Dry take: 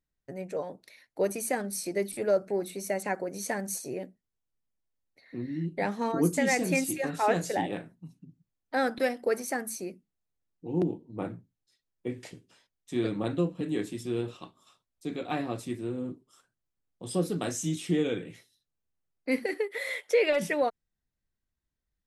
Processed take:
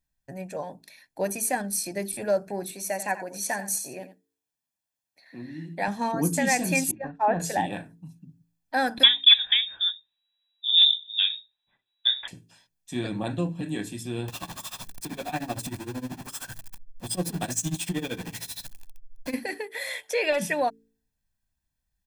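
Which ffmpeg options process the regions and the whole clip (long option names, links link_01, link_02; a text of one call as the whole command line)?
ffmpeg -i in.wav -filter_complex "[0:a]asettb=1/sr,asplit=3[link_01][link_02][link_03];[link_01]atrim=end=2.714[link_04];[link_02]atrim=start=2.71:end=5.88,asetpts=PTS-STARTPTS,afade=type=in:duration=0.004:curve=qsin,afade=type=out:start_time=3.166:duration=0.004:curve=qsin,highpass=frequency=340:poles=1,aecho=1:1:87:0.237,atrim=end_sample=139797[link_05];[link_03]atrim=start=5.876[link_06];[link_04][link_05]acrossfade=duration=0.004:curve1=hsin:curve2=qsin[link_07];[link_07][link_06]acrossfade=duration=0.004:curve1=qsin:curve2=hsin,asettb=1/sr,asplit=3[link_08][link_09][link_10];[link_08]atrim=end=6.914[link_11];[link_09]atrim=start=6.91:end=7.4,asetpts=PTS-STARTPTS,afade=type=in:duration=0.004:curve=qsin,afade=type=out:start_time=0.486:duration=0.004:curve=qsin,agate=range=-33dB:threshold=-27dB:ratio=3:release=100:detection=peak,lowpass=1300[link_12];[link_10]atrim=start=7.396[link_13];[link_11][link_12]acrossfade=duration=0.004:curve1=hsin:curve2=qsin[link_14];[link_14][link_13]acrossfade=duration=0.004:curve1=qsin:curve2=hsin,asettb=1/sr,asplit=3[link_15][link_16][link_17];[link_15]atrim=end=9.034[link_18];[link_16]atrim=start=9.03:end=12.28,asetpts=PTS-STARTPTS,afade=type=in:duration=0.004:curve=qsin,afade=type=out:start_time=3.246:duration=0.004:curve=qsin,acontrast=51,aeval=exprs='clip(val(0),-1,0.15)':channel_layout=same,lowpass=frequency=3300:width_type=q:width=0.5098,lowpass=frequency=3300:width_type=q:width=0.6013,lowpass=frequency=3300:width_type=q:width=0.9,lowpass=frequency=3300:width_type=q:width=2.563,afreqshift=-3900[link_19];[link_17]atrim=start=12.276[link_20];[link_18][link_19]acrossfade=duration=0.004:curve1=hsin:curve2=qsin[link_21];[link_21][link_20]acrossfade=duration=0.004:curve1=qsin:curve2=hsin,asettb=1/sr,asplit=3[link_22][link_23][link_24];[link_22]atrim=end=14.284[link_25];[link_23]atrim=start=14.28:end=19.34,asetpts=PTS-STARTPTS,afade=type=in:duration=0.004:curve=qsin,afade=type=out:start_time=5.056:duration=0.004:curve=qsin,aeval=exprs='val(0)+0.5*0.0211*sgn(val(0))':channel_layout=same,tremolo=f=13:d=0.93[link_26];[link_24]atrim=start=19.336[link_27];[link_25][link_26]acrossfade=duration=0.004:curve1=hsin:curve2=qsin[link_28];[link_28][link_27]acrossfade=duration=0.004:curve1=qsin:curve2=hsin,highshelf=frequency=5400:gain=5.5,aecho=1:1:1.2:0.56,bandreject=frequency=55.88:width_type=h:width=4,bandreject=frequency=111.76:width_type=h:width=4,bandreject=frequency=167.64:width_type=h:width=4,bandreject=frequency=223.52:width_type=h:width=4,bandreject=frequency=279.4:width_type=h:width=4,bandreject=frequency=335.28:width_type=h:width=4,bandreject=frequency=391.16:width_type=h:width=4,bandreject=frequency=447.04:width_type=h:width=4,volume=1.5dB" out.wav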